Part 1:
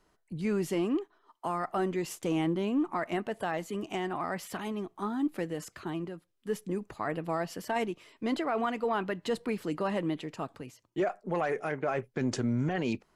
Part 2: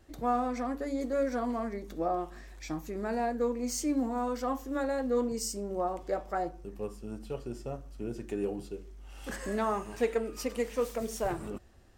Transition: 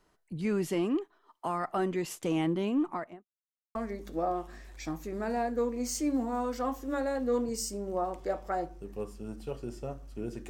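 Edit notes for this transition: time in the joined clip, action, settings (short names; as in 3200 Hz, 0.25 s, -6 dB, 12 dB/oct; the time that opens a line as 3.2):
part 1
2.82–3.27 studio fade out
3.27–3.75 mute
3.75 switch to part 2 from 1.58 s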